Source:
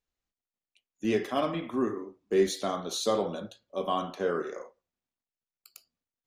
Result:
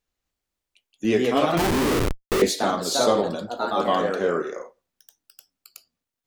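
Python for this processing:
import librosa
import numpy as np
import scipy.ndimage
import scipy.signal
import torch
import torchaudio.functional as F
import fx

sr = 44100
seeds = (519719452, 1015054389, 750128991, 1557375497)

y = fx.echo_pitch(x, sr, ms=258, semitones=2, count=2, db_per_echo=-3.0)
y = fx.schmitt(y, sr, flips_db=-33.5, at=(1.57, 2.42))
y = y * 10.0 ** (6.0 / 20.0)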